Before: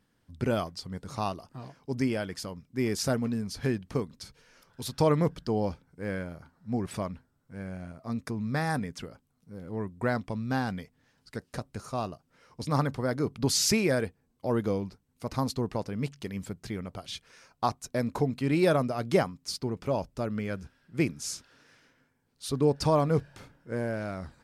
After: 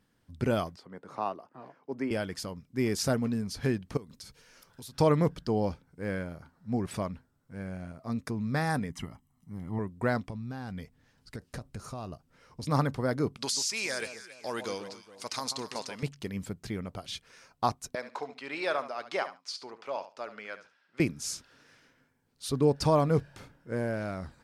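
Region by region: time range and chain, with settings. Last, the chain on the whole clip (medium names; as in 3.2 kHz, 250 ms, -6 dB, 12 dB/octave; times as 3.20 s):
0.76–2.11 s: high-pass 140 Hz + three-band isolator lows -13 dB, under 270 Hz, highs -17 dB, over 2.3 kHz
3.97–4.95 s: treble shelf 5.1 kHz +7 dB + compression 8:1, threshold -42 dBFS
8.90–9.79 s: peaking EQ 4.5 kHz -8 dB 0.56 oct + comb 1 ms, depth 79%
10.30–12.63 s: bass shelf 98 Hz +9.5 dB + compression 12:1, threshold -34 dBFS
13.37–16.03 s: frequency weighting ITU-R 468 + compression 8:1, threshold -28 dBFS + echo whose repeats swap between lows and highs 137 ms, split 1.2 kHz, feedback 59%, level -8.5 dB
17.95–21.00 s: band-pass 770–4900 Hz + feedback delay 71 ms, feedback 17%, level -12.5 dB
whole clip: none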